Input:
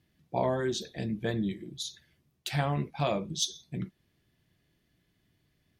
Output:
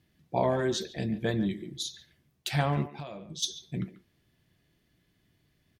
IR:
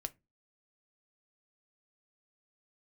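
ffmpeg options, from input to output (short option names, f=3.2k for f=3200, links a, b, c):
-filter_complex "[0:a]asplit=3[a][b][c];[a]afade=t=out:st=2.86:d=0.02[d];[b]acompressor=threshold=-40dB:ratio=10,afade=t=in:st=2.86:d=0.02,afade=t=out:st=3.42:d=0.02[e];[c]afade=t=in:st=3.42:d=0.02[f];[d][e][f]amix=inputs=3:normalize=0,asplit=2[g][h];[h]adelay=140,highpass=300,lowpass=3.4k,asoftclip=type=hard:threshold=-23dB,volume=-13dB[i];[g][i]amix=inputs=2:normalize=0,volume=2dB"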